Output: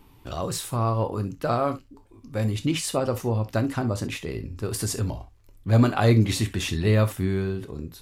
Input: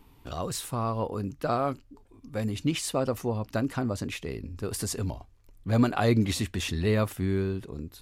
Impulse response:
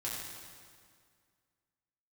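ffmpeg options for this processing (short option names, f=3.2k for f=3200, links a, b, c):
-filter_complex "[0:a]asplit=2[a][b];[1:a]atrim=start_sample=2205,atrim=end_sample=3087[c];[b][c]afir=irnorm=-1:irlink=0,volume=-3.5dB[d];[a][d]amix=inputs=2:normalize=0"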